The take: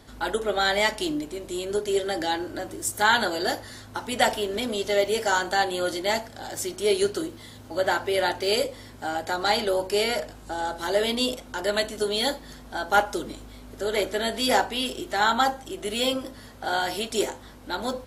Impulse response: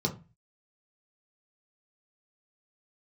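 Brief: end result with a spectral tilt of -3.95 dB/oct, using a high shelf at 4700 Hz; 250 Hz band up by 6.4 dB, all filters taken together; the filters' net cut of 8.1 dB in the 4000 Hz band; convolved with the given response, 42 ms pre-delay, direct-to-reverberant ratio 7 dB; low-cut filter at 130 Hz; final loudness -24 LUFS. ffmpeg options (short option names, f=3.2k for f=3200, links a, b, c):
-filter_complex "[0:a]highpass=130,equalizer=f=250:t=o:g=8.5,equalizer=f=4k:t=o:g=-7.5,highshelf=f=4.7k:g=-6.5,asplit=2[a][b];[1:a]atrim=start_sample=2205,adelay=42[c];[b][c]afir=irnorm=-1:irlink=0,volume=-13.5dB[d];[a][d]amix=inputs=2:normalize=0,volume=-2dB"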